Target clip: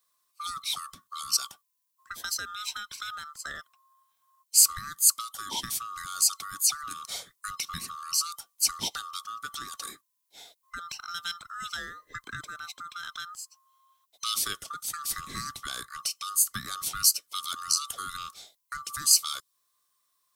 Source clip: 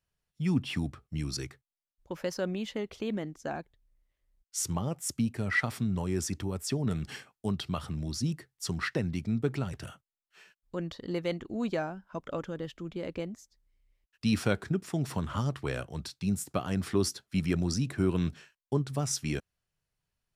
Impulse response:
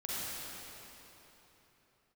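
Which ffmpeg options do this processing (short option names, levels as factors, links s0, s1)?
-filter_complex "[0:a]afftfilt=real='real(if(lt(b,960),b+48*(1-2*mod(floor(b/48),2)),b),0)':imag='imag(if(lt(b,960),b+48*(1-2*mod(floor(b/48),2)),b),0)':win_size=2048:overlap=0.75,crystalizer=i=5:c=0,acrossover=split=250|3000[s0][s1][s2];[s1]acompressor=threshold=0.0112:ratio=5[s3];[s0][s3][s2]amix=inputs=3:normalize=0"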